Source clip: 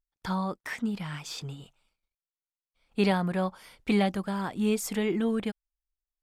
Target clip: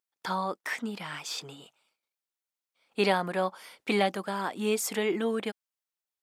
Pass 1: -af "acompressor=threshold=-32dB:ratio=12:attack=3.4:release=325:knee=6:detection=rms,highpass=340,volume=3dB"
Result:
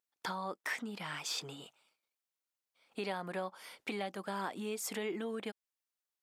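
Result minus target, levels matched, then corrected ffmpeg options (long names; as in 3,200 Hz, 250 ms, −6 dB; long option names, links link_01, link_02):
downward compressor: peak gain reduction +14.5 dB
-af "highpass=340,volume=3dB"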